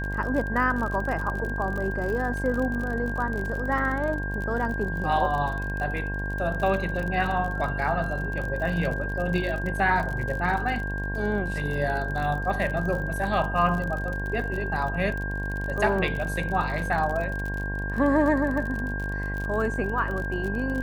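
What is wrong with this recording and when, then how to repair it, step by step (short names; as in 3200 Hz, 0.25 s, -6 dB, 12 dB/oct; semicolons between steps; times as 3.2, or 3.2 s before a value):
buzz 50 Hz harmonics 22 -31 dBFS
crackle 48/s -31 dBFS
tone 1600 Hz -32 dBFS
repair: de-click; notch 1600 Hz, Q 30; de-hum 50 Hz, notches 22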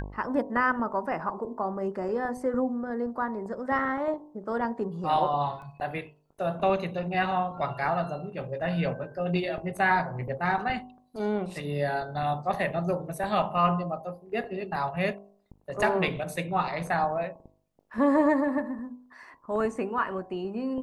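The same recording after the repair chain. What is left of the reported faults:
none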